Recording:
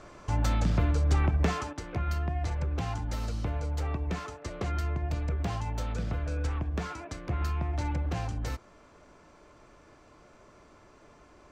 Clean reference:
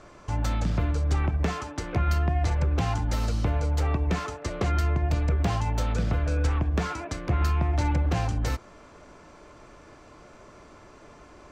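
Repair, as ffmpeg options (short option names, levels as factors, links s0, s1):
-af "asetnsamples=n=441:p=0,asendcmd='1.73 volume volume 6.5dB',volume=1"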